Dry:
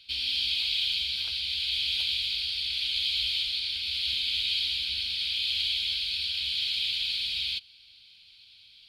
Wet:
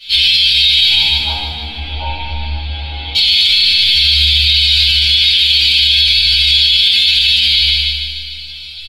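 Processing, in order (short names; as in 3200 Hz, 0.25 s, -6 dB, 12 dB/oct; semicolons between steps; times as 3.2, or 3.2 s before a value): 0.86–3.15 synth low-pass 830 Hz, resonance Q 9.2; metallic resonator 75 Hz, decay 0.63 s, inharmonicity 0.002; flange 0.62 Hz, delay 4.5 ms, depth 9.6 ms, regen +54%; feedback echo 0.15 s, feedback 58%, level -7 dB; shoebox room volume 120 m³, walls mixed, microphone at 2.5 m; maximiser +32 dB; gain -1 dB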